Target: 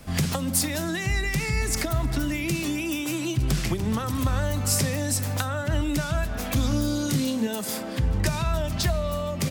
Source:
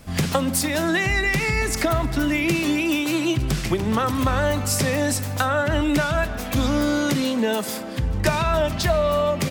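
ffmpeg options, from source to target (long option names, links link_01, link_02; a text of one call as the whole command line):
ffmpeg -i in.wav -filter_complex "[0:a]asettb=1/sr,asplit=3[link_01][link_02][link_03];[link_01]atrim=end=2.684[link_04];[link_02]atrim=start=2.68:end=3.2,asetpts=PTS-STARTPTS,afade=type=in:duration=0.004:curve=qsin,afade=type=out:start_time=0.516:duration=0.004:curve=qsin,bandreject=frequency=4200:width=6[link_05];[link_03]atrim=start=3.196[link_06];[link_04][link_05]acrossfade=duration=0.004:curve1=hsin:curve2=qsin[link_07];[link_07][link_06]acrossfade=duration=0.004:curve1=qsin:curve2=hsin,asettb=1/sr,asplit=3[link_08][link_09][link_10];[link_08]atrim=end=6.684[link_11];[link_09]atrim=start=6.68:end=7.47,asetpts=PTS-STARTPTS,afade=type=in:duration=0.004:curve=qsin,afade=type=out:start_time=0.786:duration=0.004:curve=qsin,asplit=2[link_12][link_13];[link_13]adelay=27,volume=-3.5dB[link_14];[link_12][link_14]amix=inputs=2:normalize=0,atrim=end_sample=34839[link_15];[link_10]atrim=start=7.466[link_16];[link_11][link_15]acrossfade=duration=0.004:curve1=hsin:curve2=qsin[link_17];[link_17][link_16]acrossfade=duration=0.004:curve1=qsin:curve2=hsin,acrossover=split=190|4600[link_18][link_19][link_20];[link_19]acompressor=threshold=-29dB:ratio=6[link_21];[link_18][link_21][link_20]amix=inputs=3:normalize=0" out.wav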